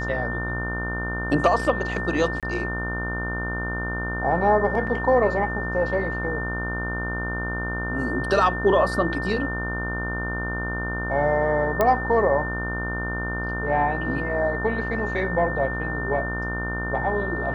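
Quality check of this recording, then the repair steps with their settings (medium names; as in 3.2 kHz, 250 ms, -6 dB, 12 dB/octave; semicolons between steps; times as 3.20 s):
buzz 60 Hz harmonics 26 -30 dBFS
whine 1.8 kHz -29 dBFS
2.40–2.43 s: dropout 27 ms
4.87 s: dropout 4.1 ms
11.81 s: pop -8 dBFS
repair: de-click; de-hum 60 Hz, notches 26; band-stop 1.8 kHz, Q 30; interpolate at 2.40 s, 27 ms; interpolate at 4.87 s, 4.1 ms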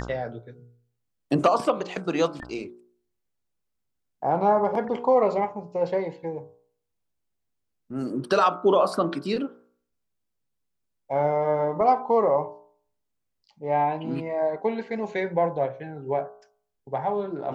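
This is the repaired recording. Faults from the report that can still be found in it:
nothing left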